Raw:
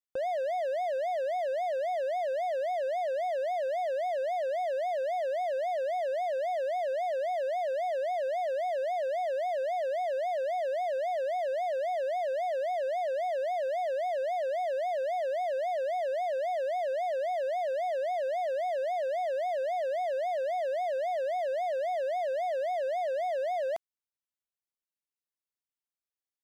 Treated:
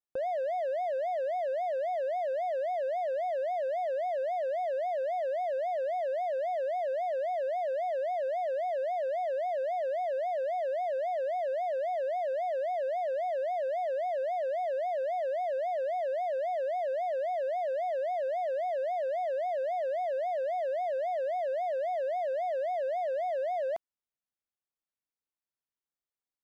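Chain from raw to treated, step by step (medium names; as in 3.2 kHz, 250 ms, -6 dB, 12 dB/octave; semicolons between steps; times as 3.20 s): treble shelf 2.6 kHz -10 dB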